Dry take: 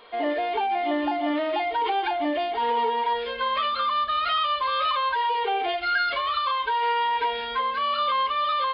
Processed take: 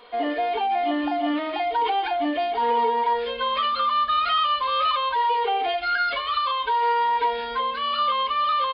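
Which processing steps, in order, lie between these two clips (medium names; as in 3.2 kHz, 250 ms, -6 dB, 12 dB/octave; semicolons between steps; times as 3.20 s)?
comb 4.1 ms, depth 51%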